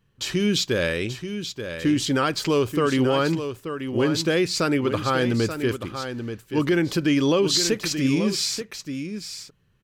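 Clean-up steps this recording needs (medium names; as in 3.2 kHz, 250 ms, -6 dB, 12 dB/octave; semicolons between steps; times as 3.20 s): inverse comb 882 ms -9 dB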